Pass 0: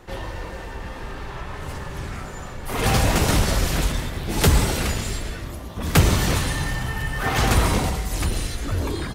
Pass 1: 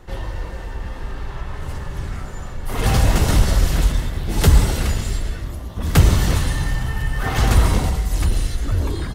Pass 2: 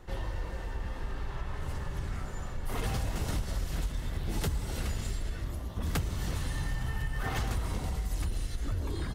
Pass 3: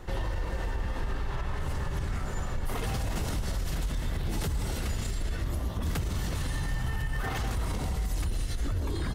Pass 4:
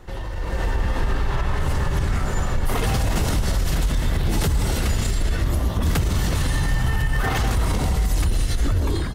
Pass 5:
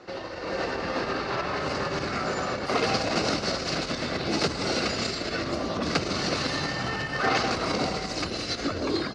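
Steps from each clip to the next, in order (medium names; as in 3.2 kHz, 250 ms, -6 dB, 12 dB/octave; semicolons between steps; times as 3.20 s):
bass shelf 100 Hz +10.5 dB; band-stop 2.4 kHz, Q 17; trim -1.5 dB
compression 10:1, threshold -21 dBFS, peak gain reduction 14.5 dB; trim -7 dB
peak limiter -30 dBFS, peak gain reduction 10.5 dB; trim +7 dB
level rider gain up to 10 dB
cabinet simulation 330–5200 Hz, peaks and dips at 420 Hz -3 dB, 920 Hz -10 dB, 1.8 kHz -7 dB, 3.3 kHz -10 dB, 4.6 kHz +5 dB; trim +5.5 dB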